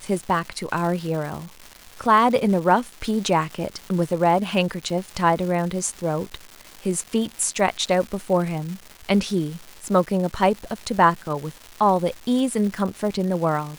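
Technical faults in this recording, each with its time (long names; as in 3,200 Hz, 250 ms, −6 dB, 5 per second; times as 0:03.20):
surface crackle 460 per second −31 dBFS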